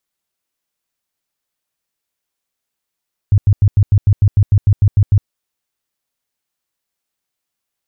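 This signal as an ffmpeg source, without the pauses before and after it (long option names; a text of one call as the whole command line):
ffmpeg -f lavfi -i "aevalsrc='0.501*sin(2*PI*101*mod(t,0.15))*lt(mod(t,0.15),6/101)':duration=1.95:sample_rate=44100" out.wav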